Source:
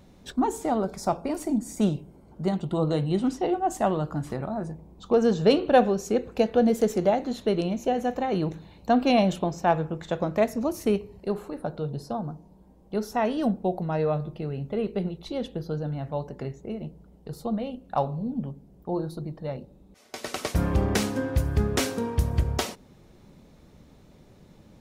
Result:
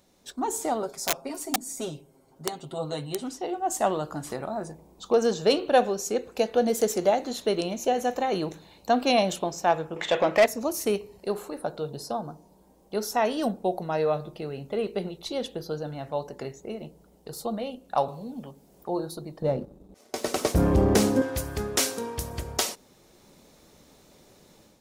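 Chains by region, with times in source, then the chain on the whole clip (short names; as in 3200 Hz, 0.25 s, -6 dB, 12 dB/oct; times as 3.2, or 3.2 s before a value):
0.82–3.24 comb 7.5 ms, depth 83% + wrapped overs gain 14 dB
9.96–10.46 band shelf 2500 Hz +9.5 dB 1 oct + overdrive pedal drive 20 dB, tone 1300 Hz, clips at -8 dBFS
18.08–18.89 tilt shelf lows -4 dB, about 640 Hz + three-band squash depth 40%
19.42–21.22 sample leveller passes 1 + tilt shelf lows +8.5 dB, about 810 Hz
whole clip: tone controls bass -11 dB, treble +9 dB; AGC gain up to 8.5 dB; gain -6.5 dB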